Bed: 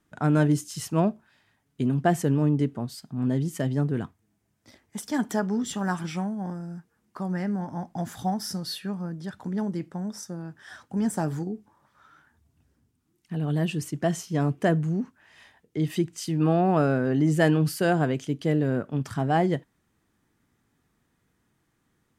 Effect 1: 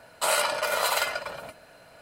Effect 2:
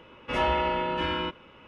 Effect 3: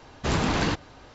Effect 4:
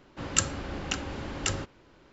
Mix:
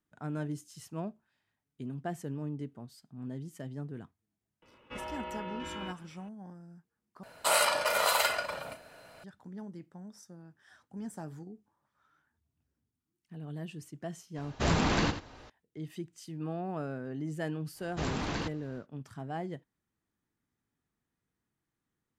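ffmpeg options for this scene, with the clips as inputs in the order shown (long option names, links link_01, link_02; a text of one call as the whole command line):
ffmpeg -i bed.wav -i cue0.wav -i cue1.wav -i cue2.wav -filter_complex "[3:a]asplit=2[link_01][link_02];[0:a]volume=-15dB[link_03];[2:a]alimiter=limit=-21.5dB:level=0:latency=1:release=38[link_04];[1:a]asplit=2[link_05][link_06];[link_06]adelay=36,volume=-11dB[link_07];[link_05][link_07]amix=inputs=2:normalize=0[link_08];[link_01]aecho=1:1:86:0.299[link_09];[link_03]asplit=2[link_10][link_11];[link_10]atrim=end=7.234[link_12];[link_08]atrim=end=2.01,asetpts=PTS-STARTPTS,volume=-2dB[link_13];[link_11]atrim=start=9.236[link_14];[link_04]atrim=end=1.67,asetpts=PTS-STARTPTS,volume=-11dB,afade=type=in:duration=0.004:curve=hsin,afade=type=out:start_time=1.666:duration=0.004:curve=hsin,adelay=4620[link_15];[link_09]atrim=end=1.14,asetpts=PTS-STARTPTS,volume=-3.5dB,afade=type=in:duration=0.004:curve=hsin,afade=type=out:start_time=1.136:duration=0.004:curve=hsin,adelay=14360[link_16];[link_02]atrim=end=1.14,asetpts=PTS-STARTPTS,volume=-10dB,afade=type=in:duration=0.1,afade=type=out:start_time=1.04:duration=0.1,adelay=17730[link_17];[link_12][link_13]acrossfade=duration=0.004:curve1=hsin:curve2=hsin[link_18];[link_18][link_14]acrossfade=duration=0.004:curve1=hsin:curve2=hsin[link_19];[link_19][link_15][link_16][link_17]amix=inputs=4:normalize=0" out.wav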